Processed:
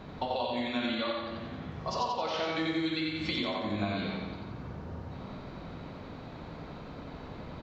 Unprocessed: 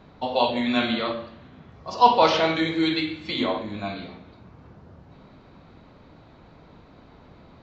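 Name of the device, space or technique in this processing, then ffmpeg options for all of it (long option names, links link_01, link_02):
serial compression, peaks first: -filter_complex "[0:a]asettb=1/sr,asplit=3[link_01][link_02][link_03];[link_01]atrim=end=0.844[link_04];[link_02]atrim=start=0.84:end=1.24,asetpts=PTS-STARTPTS,afade=type=in:duration=0.004:curve=qsin,afade=type=out:start_time=0.396:duration=0.004:curve=qsin,aecho=1:1:3.5:0.83,atrim=end_sample=17640[link_05];[link_03]atrim=start=1.236[link_06];[link_04][link_05]acrossfade=duration=0.004:curve1=hsin:curve2=qsin[link_07];[link_07][link_06]acrossfade=duration=0.004:curve1=qsin:curve2=hsin,acompressor=threshold=-31dB:ratio=6,acompressor=threshold=-38dB:ratio=2,aecho=1:1:89|178|267|356|445|534|623:0.668|0.348|0.181|0.094|0.0489|0.0254|0.0132,volume=4.5dB"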